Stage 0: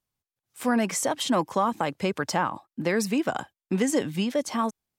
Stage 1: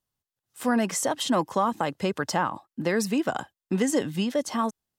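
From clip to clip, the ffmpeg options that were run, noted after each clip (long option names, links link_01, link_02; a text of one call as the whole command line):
ffmpeg -i in.wav -af "bandreject=frequency=2300:width=8.8" out.wav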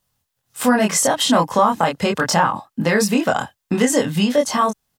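ffmpeg -i in.wav -filter_complex "[0:a]equalizer=frequency=340:width_type=o:width=0.43:gain=-8.5,asplit=2[link_01][link_02];[link_02]adelay=24,volume=-2dB[link_03];[link_01][link_03]amix=inputs=2:normalize=0,asplit=2[link_04][link_05];[link_05]acompressor=threshold=-32dB:ratio=6,volume=2dB[link_06];[link_04][link_06]amix=inputs=2:normalize=0,volume=5dB" out.wav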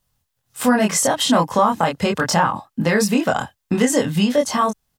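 ffmpeg -i in.wav -af "lowshelf=frequency=87:gain=9,volume=-1dB" out.wav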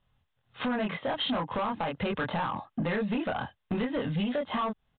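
ffmpeg -i in.wav -af "acompressor=threshold=-23dB:ratio=6,aresample=8000,asoftclip=type=tanh:threshold=-24.5dB,aresample=44100" out.wav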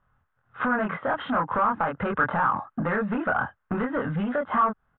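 ffmpeg -i in.wav -af "lowpass=frequency=1400:width_type=q:width=4.3,volume=2dB" out.wav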